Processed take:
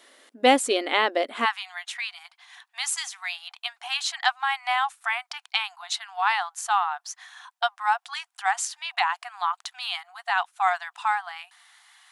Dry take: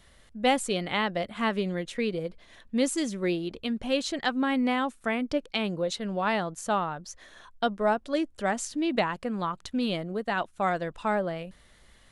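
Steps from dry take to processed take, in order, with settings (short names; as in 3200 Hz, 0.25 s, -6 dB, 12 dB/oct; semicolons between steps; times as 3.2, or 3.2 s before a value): brick-wall FIR high-pass 240 Hz, from 1.44 s 700 Hz; gain +6 dB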